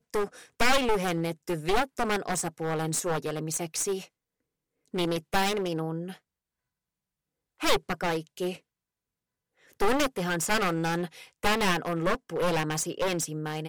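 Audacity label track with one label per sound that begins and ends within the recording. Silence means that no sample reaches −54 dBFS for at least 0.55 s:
4.860000	6.180000	sound
7.600000	8.600000	sound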